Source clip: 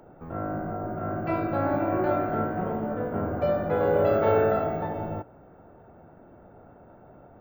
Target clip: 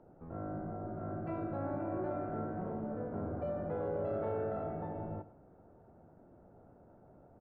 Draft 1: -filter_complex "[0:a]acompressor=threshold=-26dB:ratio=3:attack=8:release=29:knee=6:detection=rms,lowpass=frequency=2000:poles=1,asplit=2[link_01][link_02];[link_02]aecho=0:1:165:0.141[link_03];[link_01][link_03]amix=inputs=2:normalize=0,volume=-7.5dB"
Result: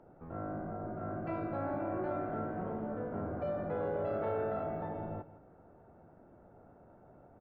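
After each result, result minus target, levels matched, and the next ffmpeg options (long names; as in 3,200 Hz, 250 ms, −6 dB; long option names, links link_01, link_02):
echo 55 ms late; 2,000 Hz band +4.0 dB
-filter_complex "[0:a]acompressor=threshold=-26dB:ratio=3:attack=8:release=29:knee=6:detection=rms,lowpass=frequency=2000:poles=1,asplit=2[link_01][link_02];[link_02]aecho=0:1:110:0.141[link_03];[link_01][link_03]amix=inputs=2:normalize=0,volume=-7.5dB"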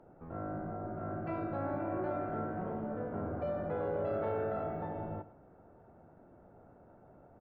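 2,000 Hz band +4.0 dB
-filter_complex "[0:a]acompressor=threshold=-26dB:ratio=3:attack=8:release=29:knee=6:detection=rms,lowpass=frequency=740:poles=1,asplit=2[link_01][link_02];[link_02]aecho=0:1:110:0.141[link_03];[link_01][link_03]amix=inputs=2:normalize=0,volume=-7.5dB"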